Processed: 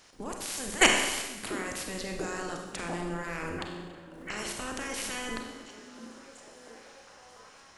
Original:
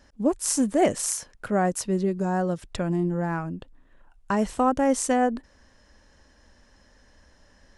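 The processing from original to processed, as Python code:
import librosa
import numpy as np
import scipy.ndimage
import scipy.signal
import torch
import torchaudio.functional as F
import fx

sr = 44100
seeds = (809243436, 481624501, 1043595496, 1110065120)

y = fx.spec_clip(x, sr, under_db=28)
y = fx.dynamic_eq(y, sr, hz=880.0, q=0.86, threshold_db=-36.0, ratio=4.0, max_db=-5)
y = fx.level_steps(y, sr, step_db=21)
y = fx.echo_stepped(y, sr, ms=692, hz=250.0, octaves=0.7, feedback_pct=70, wet_db=-6.0)
y = fx.rev_schroeder(y, sr, rt60_s=1.2, comb_ms=31, drr_db=2.0)
y = y * librosa.db_to_amplitude(4.0)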